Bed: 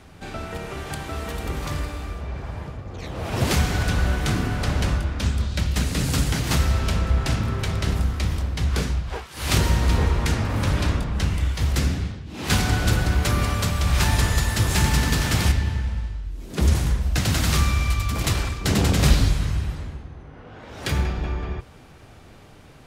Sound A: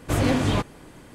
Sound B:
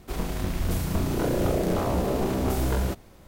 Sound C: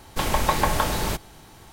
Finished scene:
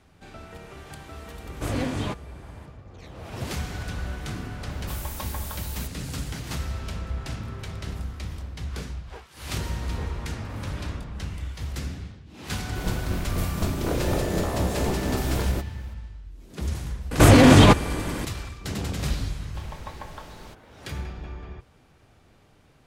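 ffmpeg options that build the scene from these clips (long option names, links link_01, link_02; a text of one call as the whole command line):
ffmpeg -i bed.wav -i cue0.wav -i cue1.wav -i cue2.wav -filter_complex "[1:a]asplit=2[link_01][link_02];[3:a]asplit=2[link_03][link_04];[0:a]volume=-10.5dB[link_05];[link_03]aemphasis=mode=production:type=50fm[link_06];[2:a]tremolo=f=4.1:d=0.29[link_07];[link_02]alimiter=level_in=19dB:limit=-1dB:release=50:level=0:latency=1[link_08];[link_04]acrossover=split=6500[link_09][link_10];[link_10]acompressor=threshold=-43dB:ratio=4:attack=1:release=60[link_11];[link_09][link_11]amix=inputs=2:normalize=0[link_12];[link_01]atrim=end=1.14,asetpts=PTS-STARTPTS,volume=-6.5dB,afade=type=in:duration=0.004:curve=hsin,afade=type=out:start_time=1.136:duration=0.004:curve=hsin,adelay=1520[link_13];[link_06]atrim=end=1.72,asetpts=PTS-STARTPTS,volume=-17dB,afade=type=in:duration=0.004:curve=hsin,afade=type=out:start_time=1.716:duration=0.004:curve=hsin,adelay=4710[link_14];[link_07]atrim=end=3.27,asetpts=PTS-STARTPTS,volume=-0.5dB,afade=type=in:duration=0.004:curve=hsin,afade=type=out:start_time=3.266:duration=0.004:curve=hsin,adelay=12670[link_15];[link_08]atrim=end=1.14,asetpts=PTS-STARTPTS,volume=-3dB,afade=type=in:duration=0.004:curve=hsin,afade=type=out:start_time=1.136:duration=0.004:curve=hsin,adelay=17110[link_16];[link_12]atrim=end=1.72,asetpts=PTS-STARTPTS,volume=-18dB,afade=type=in:duration=0.004:curve=hsin,afade=type=out:start_time=1.716:duration=0.004:curve=hsin,adelay=19380[link_17];[link_05][link_13][link_14][link_15][link_16][link_17]amix=inputs=6:normalize=0" out.wav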